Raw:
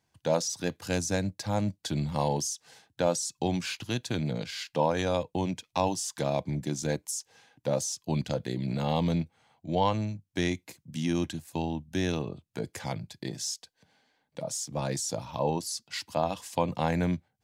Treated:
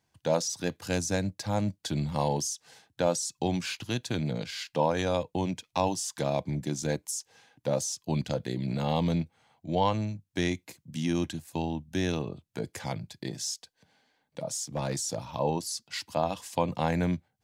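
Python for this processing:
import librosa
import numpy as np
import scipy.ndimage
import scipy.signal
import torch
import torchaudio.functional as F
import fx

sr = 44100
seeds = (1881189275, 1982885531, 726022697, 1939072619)

y = fx.clip_hard(x, sr, threshold_db=-24.0, at=(14.75, 15.24))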